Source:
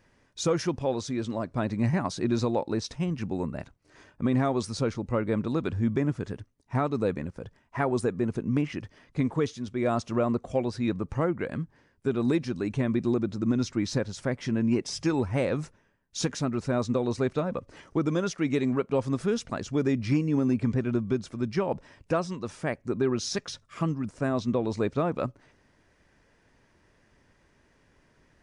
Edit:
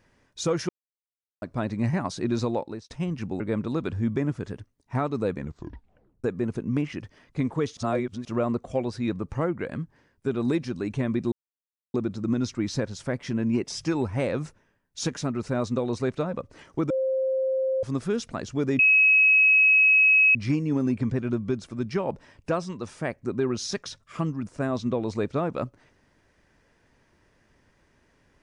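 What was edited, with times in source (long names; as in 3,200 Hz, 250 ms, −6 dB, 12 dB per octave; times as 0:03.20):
0:00.69–0:01.42: silence
0:02.54–0:02.90: fade out
0:03.40–0:05.20: remove
0:07.17: tape stop 0.87 s
0:09.57–0:10.05: reverse
0:13.12: splice in silence 0.62 s
0:18.08–0:19.01: beep over 527 Hz −22 dBFS
0:19.97: insert tone 2,560 Hz −14.5 dBFS 1.56 s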